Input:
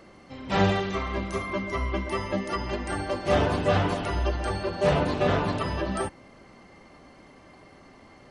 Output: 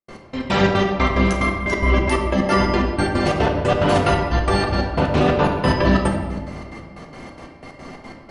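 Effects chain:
in parallel at +2.5 dB: compressor whose output falls as the input rises −29 dBFS, ratio −0.5
on the sum: gate pattern ".x..x.xx" 181 BPM −60 dB
convolution reverb RT60 1.6 s, pre-delay 4 ms, DRR 1 dB
level +3.5 dB

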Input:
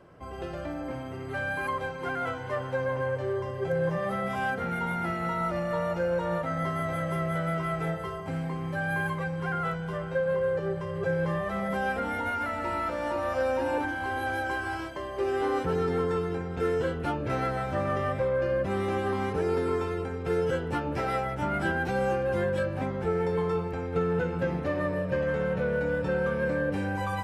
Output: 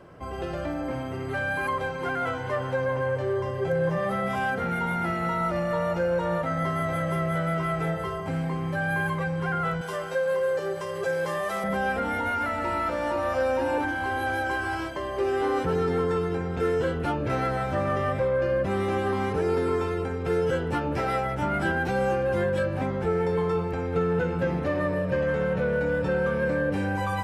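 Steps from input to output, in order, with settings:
0:09.81–0:11.64: bass and treble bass −15 dB, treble +12 dB
in parallel at −2 dB: brickwall limiter −28.5 dBFS, peak gain reduction 11 dB

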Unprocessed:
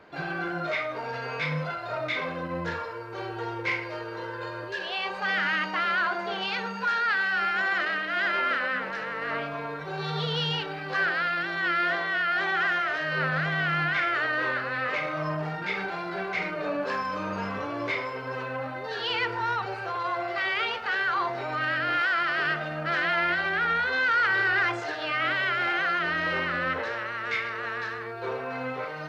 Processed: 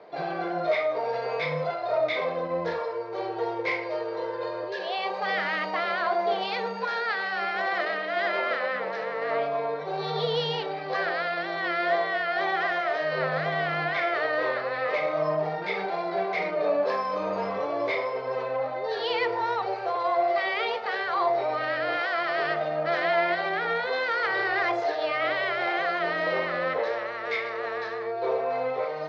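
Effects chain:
loudspeaker in its box 210–5,300 Hz, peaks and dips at 260 Hz −8 dB, 470 Hz +6 dB, 670 Hz +8 dB, 1,500 Hz −10 dB, 2,800 Hz −8 dB
level +2 dB

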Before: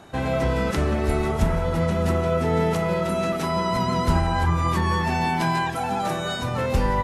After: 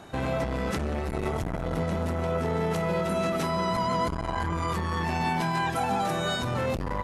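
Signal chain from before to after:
0:03.76–0:04.73: EQ curve with evenly spaced ripples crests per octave 1.8, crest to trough 8 dB
brickwall limiter −17.5 dBFS, peak gain reduction 9.5 dB
saturating transformer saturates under 260 Hz

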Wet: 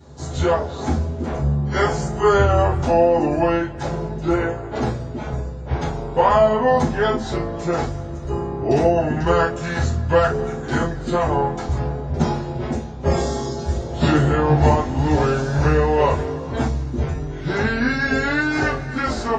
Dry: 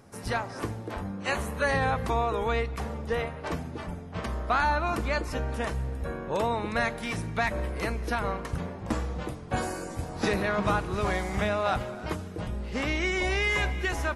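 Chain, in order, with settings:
speed change −27%
convolution reverb, pre-delay 3 ms, DRR −13.5 dB
level −6.5 dB

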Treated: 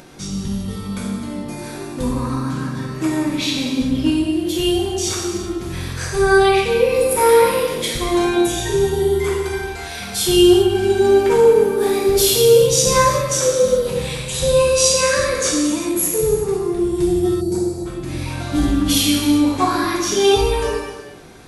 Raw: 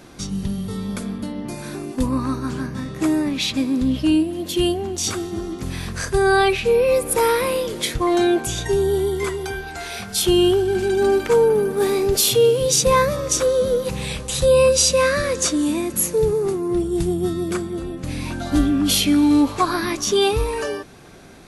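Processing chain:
reverb whose tail is shaped and stops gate 440 ms falling, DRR −4.5 dB
upward compression, threshold −36 dBFS
gain on a spectral selection 0:17.41–0:17.86, 990–3,800 Hz −17 dB
level −3.5 dB

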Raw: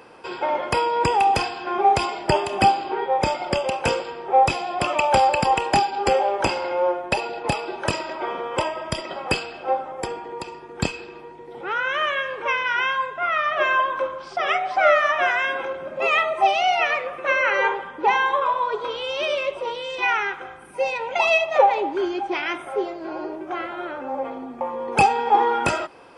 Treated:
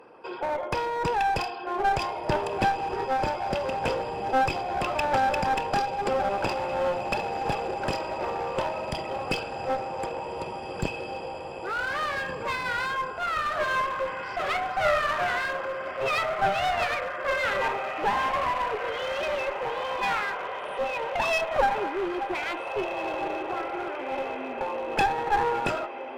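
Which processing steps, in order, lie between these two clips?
spectral envelope exaggerated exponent 1.5
feedback delay with all-pass diffusion 1,715 ms, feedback 59%, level −9 dB
asymmetric clip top −24 dBFS
level −4 dB

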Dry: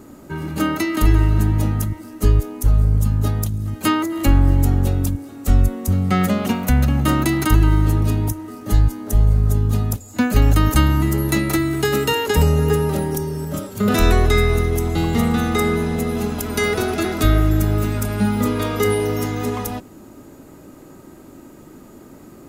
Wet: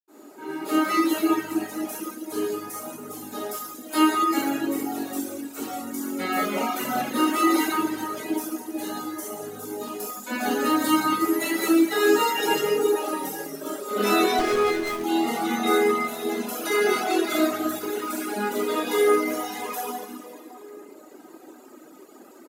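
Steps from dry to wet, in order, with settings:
convolution reverb RT60 2.9 s, pre-delay 77 ms
reverb reduction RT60 1.7 s
high-pass filter 290 Hz 24 dB per octave
slap from a distant wall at 280 metres, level −23 dB
0:14.39–0:15.04: windowed peak hold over 9 samples

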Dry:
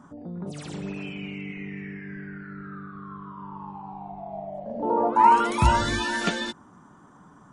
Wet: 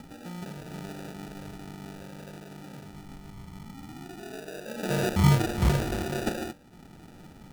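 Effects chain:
hum removal 97.44 Hz, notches 14
upward compression, threshold −36 dBFS
decimation without filtering 41×
level −3.5 dB

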